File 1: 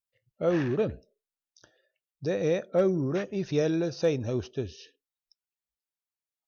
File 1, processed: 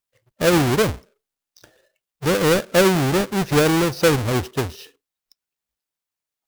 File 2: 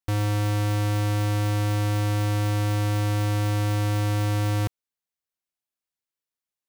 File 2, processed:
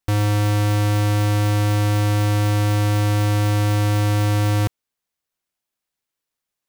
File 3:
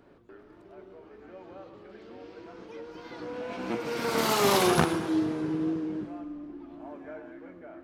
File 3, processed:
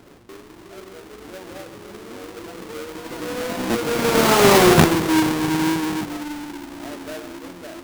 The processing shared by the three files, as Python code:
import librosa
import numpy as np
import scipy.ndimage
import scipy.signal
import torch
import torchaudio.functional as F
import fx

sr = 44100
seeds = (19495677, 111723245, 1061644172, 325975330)

y = fx.halfwave_hold(x, sr)
y = y * 10.0 ** (5.5 / 20.0)